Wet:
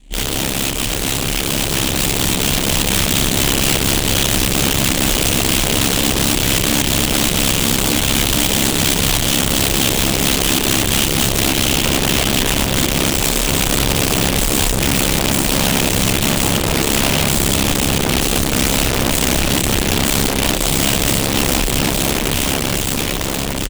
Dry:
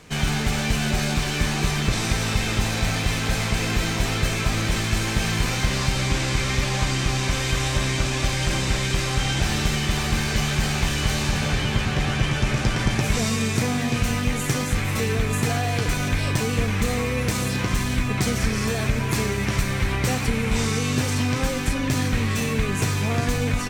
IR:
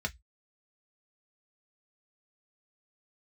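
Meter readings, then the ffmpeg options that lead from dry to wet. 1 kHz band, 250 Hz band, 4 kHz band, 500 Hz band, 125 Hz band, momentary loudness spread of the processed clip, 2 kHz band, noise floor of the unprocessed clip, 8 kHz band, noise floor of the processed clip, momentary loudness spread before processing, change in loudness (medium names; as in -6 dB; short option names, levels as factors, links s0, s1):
+6.5 dB, +7.0 dB, +11.0 dB, +7.5 dB, +2.0 dB, 3 LU, +5.5 dB, -26 dBFS, +13.0 dB, -20 dBFS, 1 LU, +8.5 dB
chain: -af "equalizer=f=230:t=o:w=0.2:g=4,aeval=exprs='abs(val(0))':c=same,firequalizer=gain_entry='entry(280,0);entry(410,-11);entry(740,-8);entry(1200,-21);entry(3100,-1);entry(5200,-15);entry(7800,-1);entry(13000,-13)':delay=0.05:min_phase=1,aecho=1:1:34|66:0.596|0.473,aeval=exprs='(mod(8.91*val(0)+1,2)-1)/8.91':c=same,dynaudnorm=f=360:g=11:m=1.58,aeval=exprs='val(0)*sin(2*PI*34*n/s)':c=same,volume=1.78"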